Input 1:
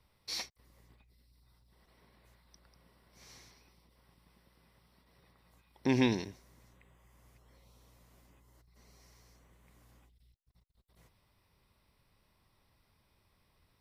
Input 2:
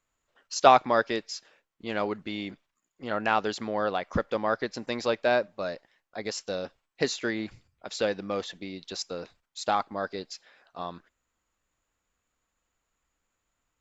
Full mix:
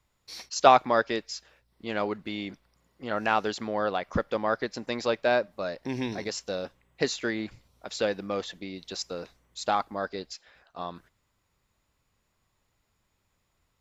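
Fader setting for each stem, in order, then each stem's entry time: -4.0 dB, 0.0 dB; 0.00 s, 0.00 s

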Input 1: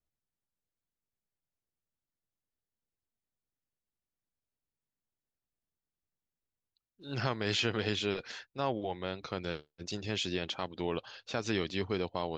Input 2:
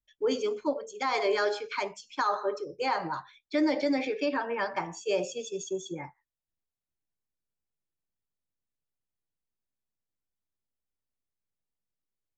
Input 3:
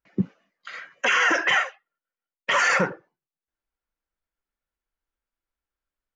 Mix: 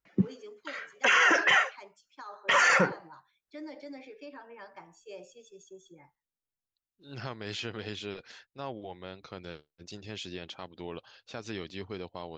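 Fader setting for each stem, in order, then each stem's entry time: -6.0 dB, -17.0 dB, -2.0 dB; 0.00 s, 0.00 s, 0.00 s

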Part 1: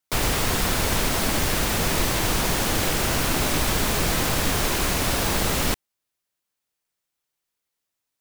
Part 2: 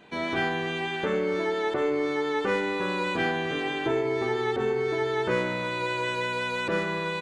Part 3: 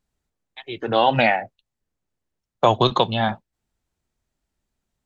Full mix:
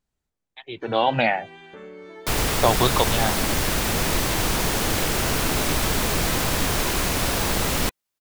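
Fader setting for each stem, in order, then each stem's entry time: 0.0 dB, -14.5 dB, -3.0 dB; 2.15 s, 0.70 s, 0.00 s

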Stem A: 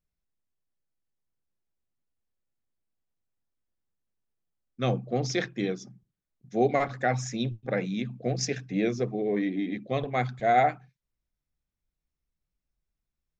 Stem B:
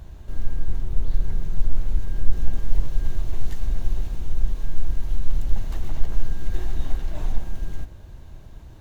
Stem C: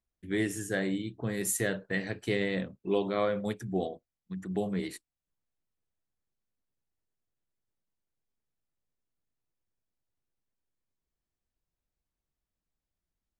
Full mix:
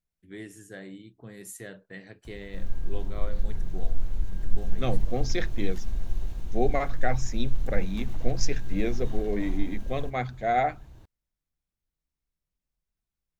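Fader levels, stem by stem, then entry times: -2.5 dB, -6.0 dB, -11.5 dB; 0.00 s, 2.25 s, 0.00 s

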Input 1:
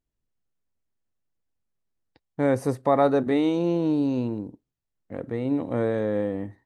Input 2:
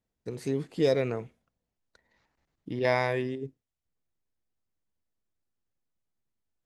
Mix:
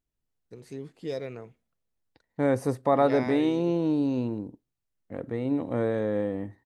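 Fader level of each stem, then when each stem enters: -2.0 dB, -9.0 dB; 0.00 s, 0.25 s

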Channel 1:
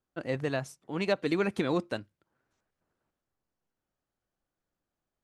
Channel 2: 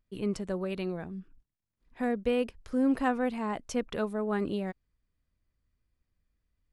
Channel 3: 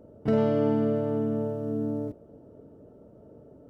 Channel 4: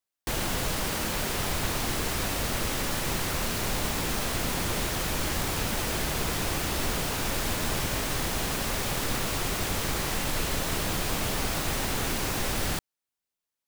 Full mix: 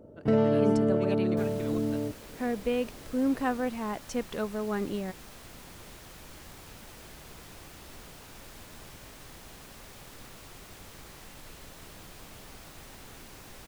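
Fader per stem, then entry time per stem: -12.5 dB, -1.0 dB, 0.0 dB, -19.0 dB; 0.00 s, 0.40 s, 0.00 s, 1.10 s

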